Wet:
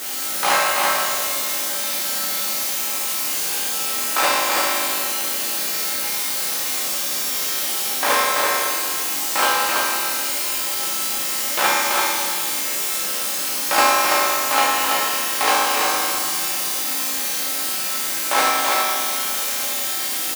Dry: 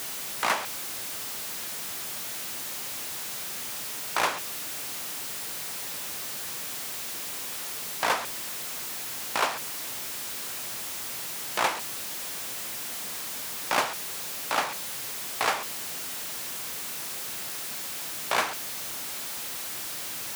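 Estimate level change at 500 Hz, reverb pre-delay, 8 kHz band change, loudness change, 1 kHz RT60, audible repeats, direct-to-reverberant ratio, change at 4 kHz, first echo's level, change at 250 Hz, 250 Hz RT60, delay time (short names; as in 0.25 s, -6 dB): +11.5 dB, 4 ms, +12.0 dB, +12.0 dB, 2.1 s, 1, -8.0 dB, +12.0 dB, -3.5 dB, +11.0 dB, 2.1 s, 0.333 s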